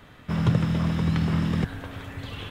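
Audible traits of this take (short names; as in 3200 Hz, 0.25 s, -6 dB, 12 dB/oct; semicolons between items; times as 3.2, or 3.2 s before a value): noise floor -50 dBFS; spectral tilt -7.0 dB/oct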